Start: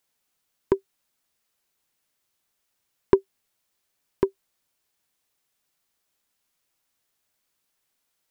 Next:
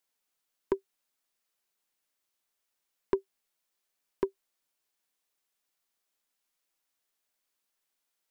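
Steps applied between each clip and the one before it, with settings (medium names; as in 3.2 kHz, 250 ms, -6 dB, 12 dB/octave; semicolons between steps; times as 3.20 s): peaking EQ 93 Hz -14.5 dB 1.4 oct; peak limiter -7.5 dBFS, peak gain reduction 3.5 dB; trim -6 dB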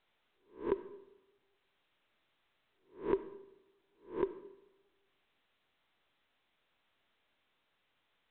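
reverse spectral sustain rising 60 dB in 0.33 s; on a send at -12 dB: reverberation RT60 0.90 s, pre-delay 10 ms; on the sum: trim -4.5 dB; µ-law 64 kbps 8 kHz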